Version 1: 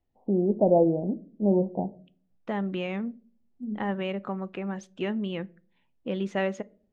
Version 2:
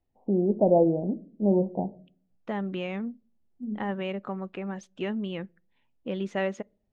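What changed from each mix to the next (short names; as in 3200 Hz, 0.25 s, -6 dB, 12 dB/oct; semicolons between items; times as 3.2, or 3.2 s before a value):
second voice: send -11.0 dB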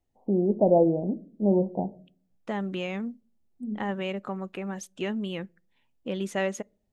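master: remove air absorption 160 m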